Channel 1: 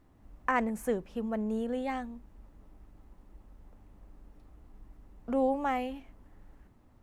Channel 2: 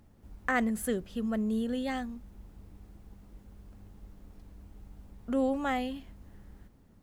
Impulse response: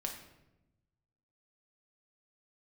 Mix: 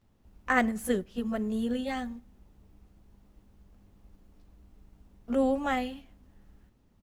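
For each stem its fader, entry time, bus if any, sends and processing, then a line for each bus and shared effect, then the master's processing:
+0.5 dB, 0.00 s, no send, high-order bell 4.2 kHz +9.5 dB; compression, threshold -35 dBFS, peak gain reduction 11.5 dB
+3.0 dB, 16 ms, send -16.5 dB, none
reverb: on, RT60 0.95 s, pre-delay 5 ms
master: upward expansion 1.5:1, over -43 dBFS

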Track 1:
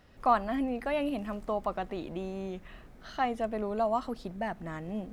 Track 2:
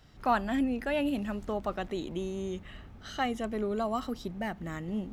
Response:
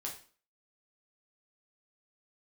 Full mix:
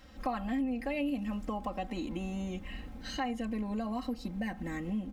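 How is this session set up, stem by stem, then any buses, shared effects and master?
-2.0 dB, 0.00 s, send -12.5 dB, none
-1.5 dB, 0.00 s, no send, peak limiter -24 dBFS, peak gain reduction 9.5 dB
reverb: on, RT60 0.40 s, pre-delay 4 ms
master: comb 3.8 ms, depth 92%; compression 2.5:1, threshold -35 dBFS, peak gain reduction 11.5 dB

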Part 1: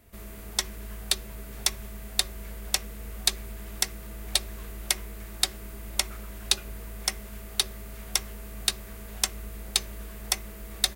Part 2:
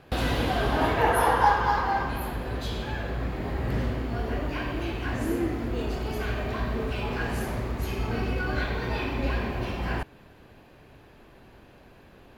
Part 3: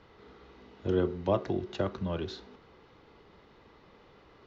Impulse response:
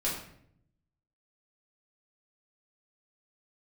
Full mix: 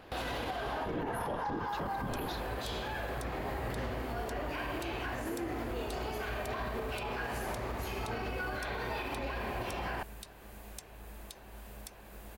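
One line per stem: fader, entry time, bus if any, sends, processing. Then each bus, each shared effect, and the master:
-8.0 dB, 1.55 s, no send, compression, threshold -35 dBFS, peak gain reduction 17 dB
-7.5 dB, 0.00 s, no send, FFT filter 220 Hz 0 dB, 790 Hz +13 dB, 4.1 kHz +7 dB; compression 2.5:1, threshold -22 dBFS, peak gain reduction 12.5 dB
+2.0 dB, 0.00 s, no send, whisper effect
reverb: none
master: peaking EQ 1.1 kHz -3.5 dB 2.5 oct; peak limiter -28 dBFS, peak gain reduction 14.5 dB

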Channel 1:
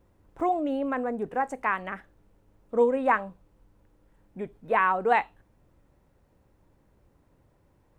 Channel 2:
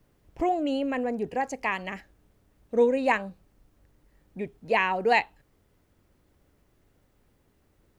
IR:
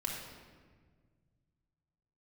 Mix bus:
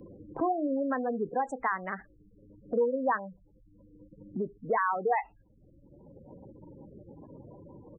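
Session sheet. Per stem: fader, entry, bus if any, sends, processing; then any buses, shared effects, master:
-2.0 dB, 0.00 s, no send, none
-11.5 dB, 27 ms, no send, treble shelf 2.1 kHz +8.5 dB; compression 2:1, threshold -40 dBFS, peak gain reduction 14 dB; small resonant body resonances 330/490 Hz, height 15 dB, ringing for 75 ms; auto duck -11 dB, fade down 1.75 s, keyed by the first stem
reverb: none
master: spectral gate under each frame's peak -15 dB strong; three bands compressed up and down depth 70%

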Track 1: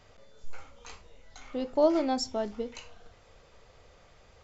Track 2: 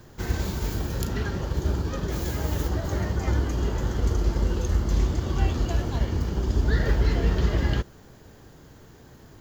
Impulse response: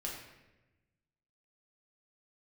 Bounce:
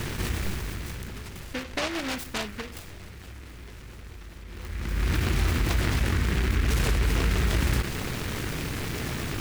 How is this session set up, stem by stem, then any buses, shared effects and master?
+2.5 dB, 0.00 s, no send, compression 6:1, threshold -29 dBFS, peak gain reduction 11.5 dB; endings held to a fixed fall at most 130 dB/s
-4.5 dB, 0.00 s, no send, level flattener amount 70%; auto duck -19 dB, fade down 1.65 s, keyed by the first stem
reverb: none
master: delay time shaken by noise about 1.7 kHz, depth 0.31 ms

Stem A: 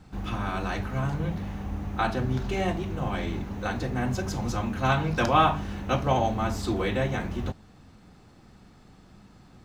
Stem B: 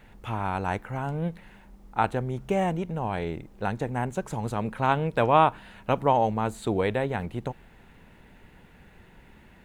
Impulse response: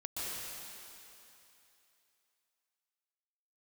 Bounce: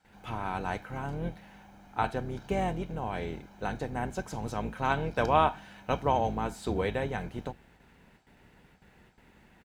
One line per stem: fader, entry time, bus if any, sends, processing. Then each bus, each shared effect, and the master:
-12.0 dB, 0.00 s, no send, high-pass 700 Hz 6 dB/octave; comb 1.3 ms, depth 69%
-5.0 dB, 0.00 s, no send, octave divider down 2 oct, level +3 dB; gate with hold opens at -41 dBFS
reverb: none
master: high-pass 120 Hz 6 dB/octave

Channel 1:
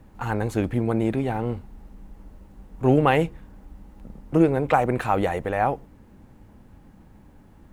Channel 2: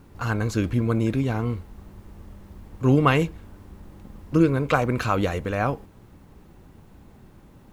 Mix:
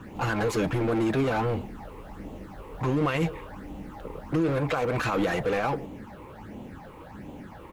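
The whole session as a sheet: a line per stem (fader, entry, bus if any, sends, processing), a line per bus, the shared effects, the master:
-12.0 dB, 0.00 s, no send, phase shifter stages 8, 1.4 Hz, lowest notch 200–1600 Hz; overdrive pedal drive 40 dB, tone 1.3 kHz, clips at -6.5 dBFS
-1.0 dB, 5.9 ms, no send, bass shelf 170 Hz -8 dB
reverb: none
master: peak limiter -17.5 dBFS, peak gain reduction 10.5 dB

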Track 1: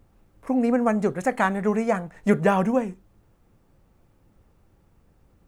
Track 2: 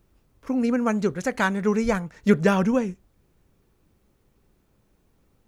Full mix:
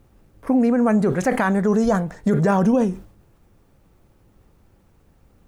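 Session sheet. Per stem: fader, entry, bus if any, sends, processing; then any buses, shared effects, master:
+2.5 dB, 0.00 s, no send, decay stretcher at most 110 dB/s
+1.0 dB, 0.00 s, no send, none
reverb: none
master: peak limiter -10 dBFS, peak gain reduction 11 dB

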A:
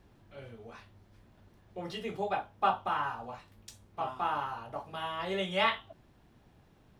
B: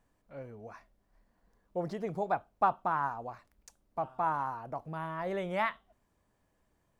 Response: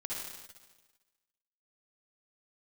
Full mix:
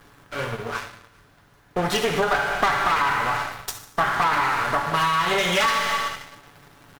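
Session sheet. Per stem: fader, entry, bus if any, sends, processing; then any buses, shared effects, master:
+1.5 dB, 0.00 s, send -10 dB, comb filter that takes the minimum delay 7 ms; treble shelf 4.3 kHz +11 dB; sine folder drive 6 dB, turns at -12.5 dBFS; auto duck -8 dB, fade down 0.65 s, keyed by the second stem
+2.0 dB, 6.4 ms, no send, none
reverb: on, RT60 1.3 s, pre-delay 50 ms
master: peaking EQ 1.4 kHz +10 dB 1.3 oct; waveshaping leveller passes 2; compression 10:1, threshold -18 dBFS, peak gain reduction 11.5 dB

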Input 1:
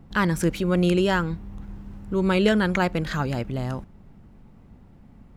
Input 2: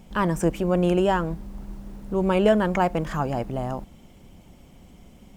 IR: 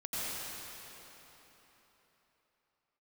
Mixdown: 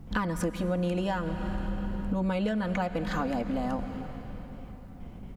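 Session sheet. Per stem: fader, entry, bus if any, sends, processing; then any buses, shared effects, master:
-2.0 dB, 0.00 s, send -15.5 dB, none
+0.5 dB, 4.1 ms, send -21 dB, gate with hold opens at -39 dBFS; low-pass 2.6 kHz 12 dB/octave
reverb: on, RT60 3.9 s, pre-delay 81 ms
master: bass shelf 160 Hz +6 dB; word length cut 12-bit, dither none; compression 10:1, threshold -26 dBFS, peak gain reduction 15.5 dB

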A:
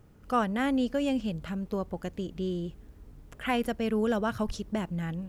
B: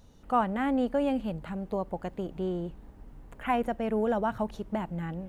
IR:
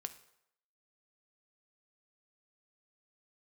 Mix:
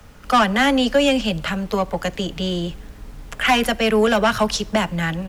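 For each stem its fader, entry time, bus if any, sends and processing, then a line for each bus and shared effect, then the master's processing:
+2.0 dB, 0.00 s, send -4 dB, high-pass 470 Hz 24 dB/octave; overdrive pedal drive 18 dB, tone 2.9 kHz, clips at -14 dBFS
+3.0 dB, 10 ms, no send, tilt shelf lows +8.5 dB, about 670 Hz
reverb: on, RT60 0.80 s, pre-delay 3 ms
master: treble shelf 2.4 kHz +10 dB

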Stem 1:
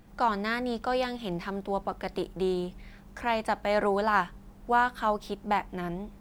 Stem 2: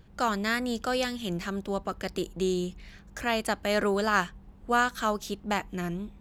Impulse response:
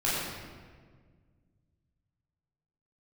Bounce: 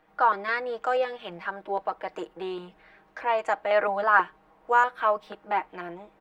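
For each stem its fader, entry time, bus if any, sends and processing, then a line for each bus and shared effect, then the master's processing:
-0.5 dB, 0.00 s, no send, comb 6.4 ms, depth 87%
-5.0 dB, 0.00 s, no send, step-sequenced low-pass 6.2 Hz 240–7000 Hz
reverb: none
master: three-band isolator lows -24 dB, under 410 Hz, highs -18 dB, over 2.9 kHz

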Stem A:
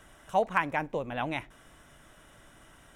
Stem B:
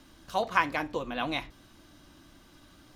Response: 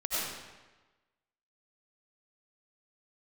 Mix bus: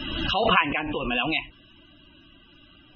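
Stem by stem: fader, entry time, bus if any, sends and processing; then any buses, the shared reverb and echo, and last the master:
-7.5 dB, 0.00 s, no send, band-pass filter 1.6 kHz, Q 0.64
+1.0 dB, 0.00 s, polarity flipped, no send, none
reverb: none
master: peaking EQ 2.8 kHz +13.5 dB 0.43 oct; loudest bins only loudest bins 64; swell ahead of each attack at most 32 dB/s

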